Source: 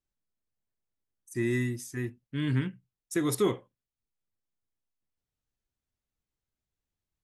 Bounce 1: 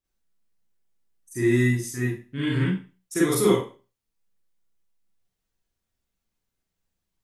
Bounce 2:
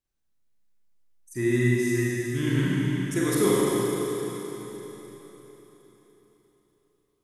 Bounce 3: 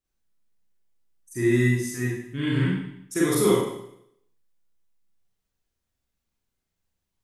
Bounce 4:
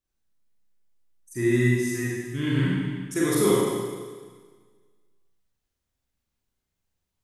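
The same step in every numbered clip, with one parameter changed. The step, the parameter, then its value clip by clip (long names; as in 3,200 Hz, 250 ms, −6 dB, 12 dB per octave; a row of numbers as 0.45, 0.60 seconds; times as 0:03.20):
four-comb reverb, RT60: 0.34, 4.1, 0.74, 1.6 seconds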